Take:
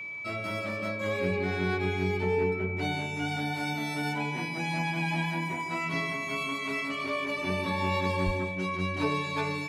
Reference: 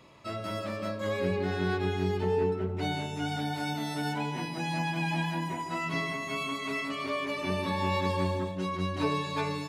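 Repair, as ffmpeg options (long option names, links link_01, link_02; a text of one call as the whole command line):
ffmpeg -i in.wav -filter_complex "[0:a]bandreject=frequency=2300:width=30,asplit=3[link_01][link_02][link_03];[link_01]afade=type=out:start_time=8.25:duration=0.02[link_04];[link_02]highpass=frequency=140:width=0.5412,highpass=frequency=140:width=1.3066,afade=type=in:start_time=8.25:duration=0.02,afade=type=out:start_time=8.37:duration=0.02[link_05];[link_03]afade=type=in:start_time=8.37:duration=0.02[link_06];[link_04][link_05][link_06]amix=inputs=3:normalize=0" out.wav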